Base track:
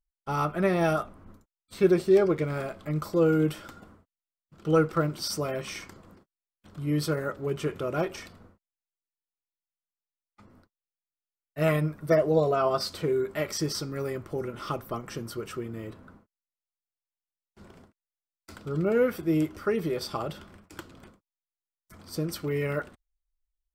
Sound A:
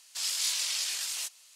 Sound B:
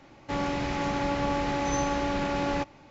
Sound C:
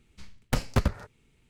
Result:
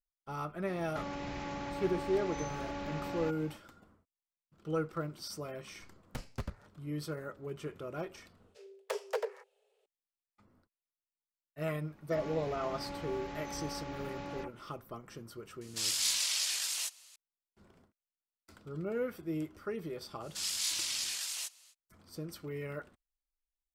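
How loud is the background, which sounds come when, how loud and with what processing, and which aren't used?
base track -11.5 dB
0.67 add B + compressor 3:1, threshold -40 dBFS
5.62 add C -15.5 dB
8.37 add C -11 dB + frequency shift +390 Hz
11.79 add B -14.5 dB + dispersion lows, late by 62 ms, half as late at 2600 Hz
15.61 add A -1 dB
20.2 add A -4 dB, fades 0.05 s

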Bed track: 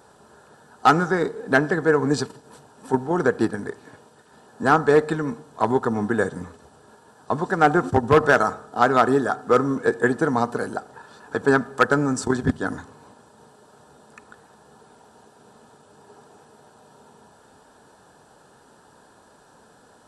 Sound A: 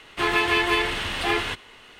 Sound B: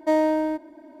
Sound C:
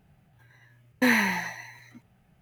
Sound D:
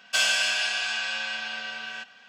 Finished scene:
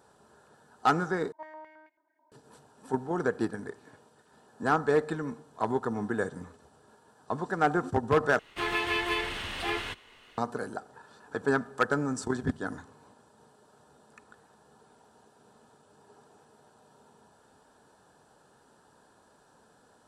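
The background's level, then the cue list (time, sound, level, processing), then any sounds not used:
bed track -8.5 dB
1.32 replace with B -11.5 dB + stepped band-pass 9.2 Hz 990–2300 Hz
8.39 replace with A -8 dB
not used: C, D

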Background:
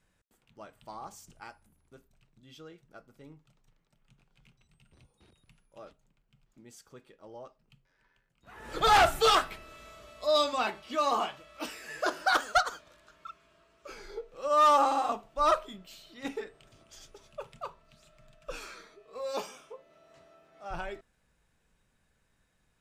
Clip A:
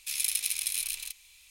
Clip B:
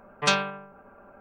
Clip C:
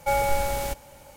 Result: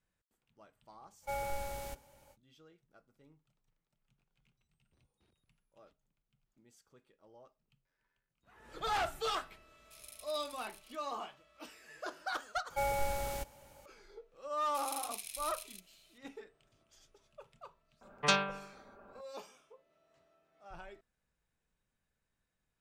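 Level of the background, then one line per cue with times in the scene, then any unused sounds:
background -12.5 dB
1.21 add C -14.5 dB, fades 0.05 s
9.84 add A -18 dB + tilt shelf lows +6.5 dB, about 830 Hz
12.7 add C -10 dB
14.68 add A -13.5 dB
18.01 add B -6 dB

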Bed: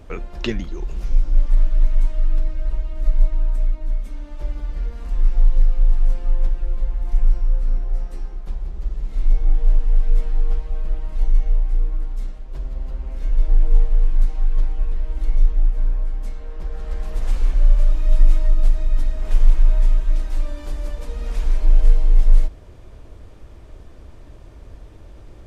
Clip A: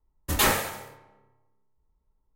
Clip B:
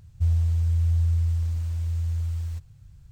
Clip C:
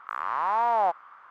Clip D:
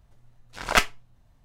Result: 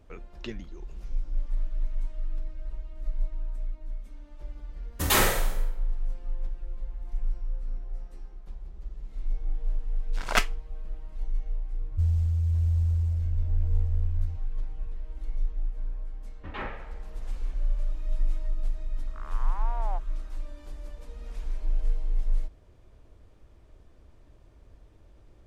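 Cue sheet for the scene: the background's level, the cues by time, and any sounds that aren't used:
bed -13.5 dB
4.71 add A -1 dB + flutter echo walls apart 8.5 m, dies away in 0.51 s
9.6 add D -4.5 dB
11.77 add B -2.5 dB + Wiener smoothing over 41 samples
16.15 add A -12.5 dB + LPF 2600 Hz 24 dB/oct
19.07 add C -14.5 dB

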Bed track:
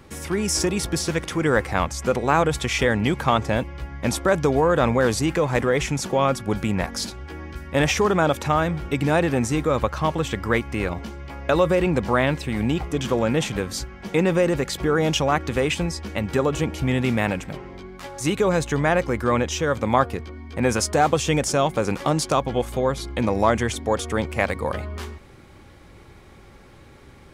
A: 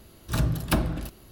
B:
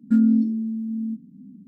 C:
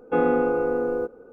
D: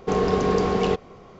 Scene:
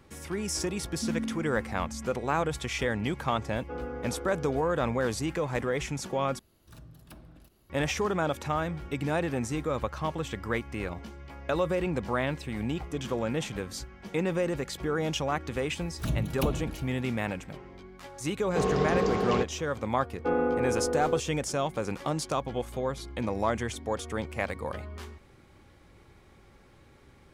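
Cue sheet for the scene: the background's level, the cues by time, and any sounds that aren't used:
bed track -9 dB
0.91 add B -15.5 dB
3.57 add C -17 dB
6.39 replace with A -14 dB + compressor 2:1, threshold -41 dBFS
15.7 add A -5 dB + envelope flanger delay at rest 11.4 ms, full sweep at -23.5 dBFS
18.48 add D -5.5 dB + HPF 41 Hz
20.13 add C -6 dB

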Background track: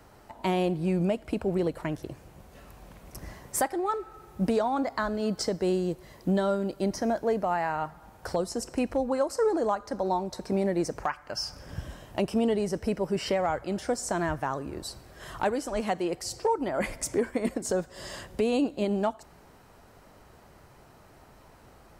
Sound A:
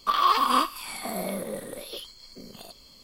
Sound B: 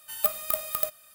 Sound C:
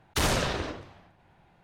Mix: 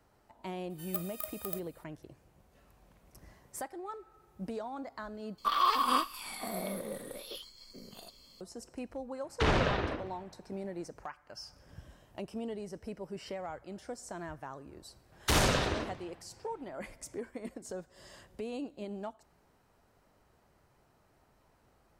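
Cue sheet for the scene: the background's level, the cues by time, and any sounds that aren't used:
background track -13.5 dB
0.7 add B -12 dB
5.38 replace with A -6 dB
9.24 add C -1 dB + LPF 2900 Hz
15.12 add C -1 dB

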